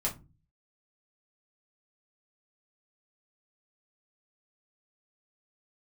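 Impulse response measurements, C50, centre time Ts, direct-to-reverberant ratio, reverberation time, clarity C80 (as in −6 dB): 14.0 dB, 16 ms, −4.0 dB, 0.30 s, 21.5 dB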